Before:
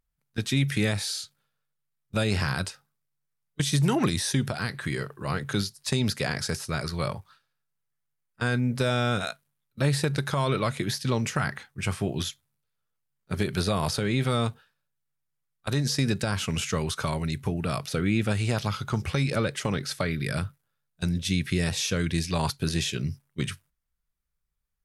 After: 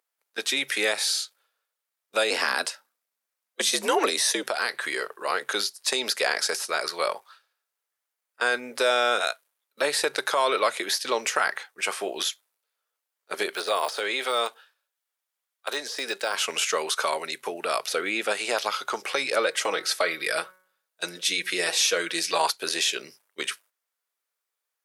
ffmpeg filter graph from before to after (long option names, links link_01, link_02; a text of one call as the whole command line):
ffmpeg -i in.wav -filter_complex "[0:a]asettb=1/sr,asplit=3[link_01][link_02][link_03];[link_01]atrim=end=2.304[link_04];[link_02]atrim=start=2.3:end=4.43,asetpts=PTS-STARTPTS,afade=type=in:duration=0.004:curve=qsin,afade=type=out:start_time=2.126:duration=0.004:curve=qsin,highpass=98,afreqshift=68[link_05];[link_03]atrim=start=4.426[link_06];[link_04][link_05]acrossfade=duration=0.004:curve1=hsin:curve2=qsin[link_07];[link_07][link_06]acrossfade=duration=0.004:curve1=qsin:curve2=hsin,asettb=1/sr,asplit=3[link_08][link_09][link_10];[link_08]atrim=end=13.494[link_11];[link_09]atrim=start=13.49:end=16.34,asetpts=PTS-STARTPTS,afade=type=in:duration=0.004:curve=qsin,afade=type=out:start_time=2.846:duration=0.004:curve=qsin,deesser=0.85,highpass=frequency=410:poles=1,equalizer=frequency=3300:width_type=o:width=0.3:gain=2.5[link_12];[link_10]atrim=start=16.336[link_13];[link_11][link_12]acrossfade=duration=0.004:curve1=hsin:curve2=qsin[link_14];[link_14][link_13]acrossfade=duration=0.004:curve1=qsin:curve2=hsin,asettb=1/sr,asplit=3[link_15][link_16][link_17];[link_15]atrim=end=19.464[link_18];[link_16]atrim=start=19.46:end=22.45,asetpts=PTS-STARTPTS,afade=type=in:duration=0.004:curve=qsin,afade=type=out:start_time=2.986:duration=0.004:curve=qsin,aecho=1:1:6.2:0.51,atrim=end_sample=131859,bandreject=frequency=185.3:width_type=h:width=4,bandreject=frequency=370.6:width_type=h:width=4,bandreject=frequency=555.9:width_type=h:width=4,bandreject=frequency=741.2:width_type=h:width=4,bandreject=frequency=926.5:width_type=h:width=4,bandreject=frequency=1111.8:width_type=h:width=4,bandreject=frequency=1297.1:width_type=h:width=4,bandreject=frequency=1482.4:width_type=h:width=4,bandreject=frequency=1667.7:width_type=h:width=4,bandreject=frequency=1853:width_type=h:width=4,bandreject=frequency=2038.3:width_type=h:width=4,bandreject=frequency=2223.6:width_type=h:width=4[link_19];[link_17]atrim=start=22.446[link_20];[link_18][link_19]acrossfade=duration=0.004:curve1=hsin:curve2=qsin[link_21];[link_21][link_20]acrossfade=duration=0.004:curve1=qsin:curve2=hsin,highpass=frequency=440:width=0.5412,highpass=frequency=440:width=1.3066,acontrast=54" out.wav